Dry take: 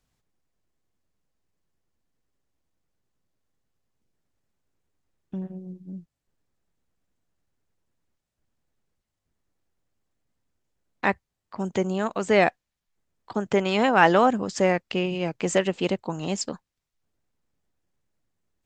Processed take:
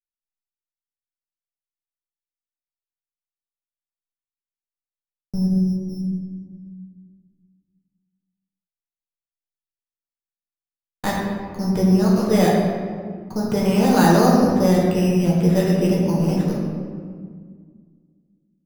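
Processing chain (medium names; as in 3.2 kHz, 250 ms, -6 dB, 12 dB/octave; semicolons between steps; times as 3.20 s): gate -40 dBFS, range -52 dB; RIAA curve playback; in parallel at +2.5 dB: peak limiter -12.5 dBFS, peak gain reduction 8.5 dB; on the sum: sample-and-hold 8×; reverberation RT60 1.8 s, pre-delay 5 ms, DRR -5 dB; trim -11 dB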